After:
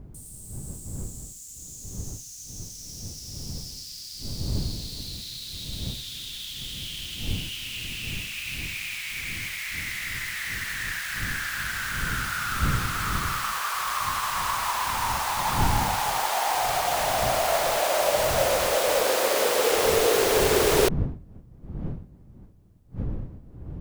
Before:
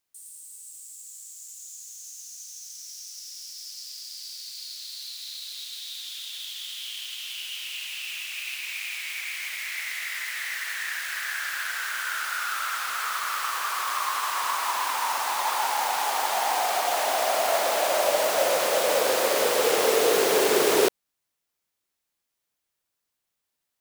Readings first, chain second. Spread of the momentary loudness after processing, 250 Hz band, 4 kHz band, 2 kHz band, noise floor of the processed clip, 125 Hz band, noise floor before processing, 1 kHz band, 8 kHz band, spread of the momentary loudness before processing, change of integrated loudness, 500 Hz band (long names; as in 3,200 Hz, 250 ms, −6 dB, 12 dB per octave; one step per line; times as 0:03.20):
16 LU, +3.5 dB, 0.0 dB, 0.0 dB, −46 dBFS, can't be measured, −82 dBFS, 0.0 dB, 0.0 dB, 18 LU, 0.0 dB, 0.0 dB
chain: wind on the microphone 130 Hz −35 dBFS